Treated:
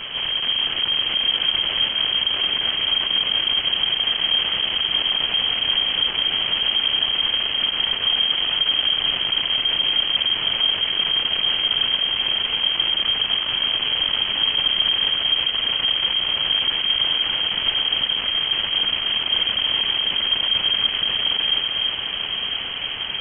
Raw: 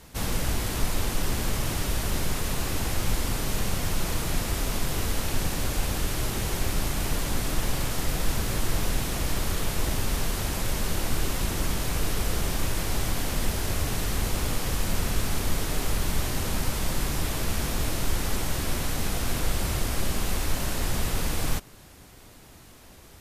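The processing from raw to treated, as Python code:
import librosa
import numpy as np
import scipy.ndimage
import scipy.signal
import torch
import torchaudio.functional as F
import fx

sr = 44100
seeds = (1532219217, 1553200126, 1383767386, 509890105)

p1 = fx.fuzz(x, sr, gain_db=51.0, gate_db=-57.0)
p2 = x + (p1 * librosa.db_to_amplitude(-5.5))
p3 = fx.echo_alternate(p2, sr, ms=334, hz=1300.0, feedback_pct=79, wet_db=-3.0)
p4 = fx.freq_invert(p3, sr, carrier_hz=3200)
y = p4 * librosa.db_to_amplitude(-7.5)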